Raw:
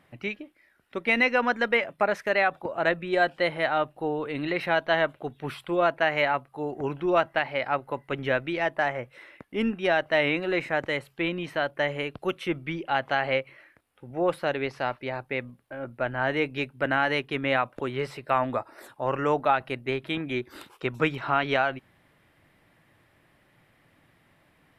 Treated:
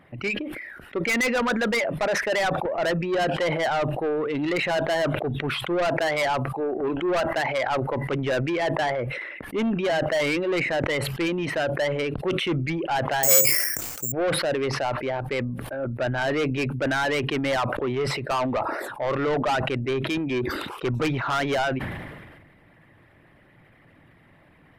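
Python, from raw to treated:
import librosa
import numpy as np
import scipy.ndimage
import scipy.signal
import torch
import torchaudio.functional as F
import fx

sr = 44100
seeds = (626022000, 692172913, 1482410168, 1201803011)

y = fx.envelope_sharpen(x, sr, power=1.5)
y = fx.peak_eq(y, sr, hz=140.0, db=-14.5, octaves=0.49, at=(6.6, 7.37))
y = 10.0 ** (-27.5 / 20.0) * np.tanh(y / 10.0 ** (-27.5 / 20.0))
y = fx.resample_bad(y, sr, factor=6, down='none', up='zero_stuff', at=(13.23, 14.12))
y = fx.sustainer(y, sr, db_per_s=37.0)
y = y * librosa.db_to_amplitude(7.0)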